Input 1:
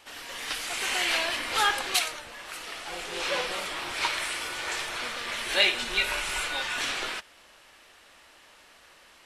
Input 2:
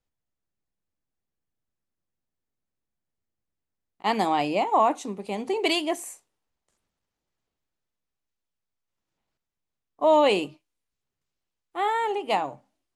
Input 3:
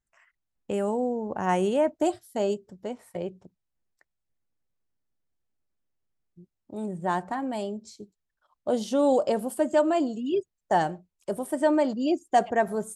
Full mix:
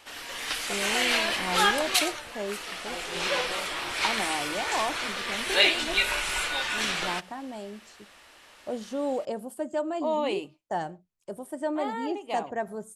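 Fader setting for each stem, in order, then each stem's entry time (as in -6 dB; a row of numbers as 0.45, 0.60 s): +1.5, -9.0, -7.5 dB; 0.00, 0.00, 0.00 s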